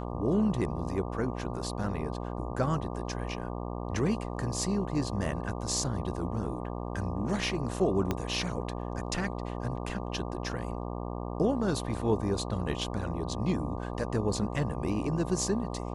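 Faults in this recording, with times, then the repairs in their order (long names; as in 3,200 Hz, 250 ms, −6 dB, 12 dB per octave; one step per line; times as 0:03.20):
mains buzz 60 Hz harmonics 20 −36 dBFS
0:08.11: click −15 dBFS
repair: click removal
hum removal 60 Hz, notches 20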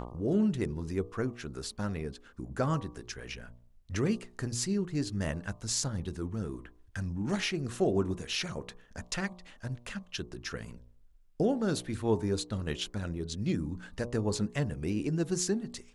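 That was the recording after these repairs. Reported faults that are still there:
0:08.11: click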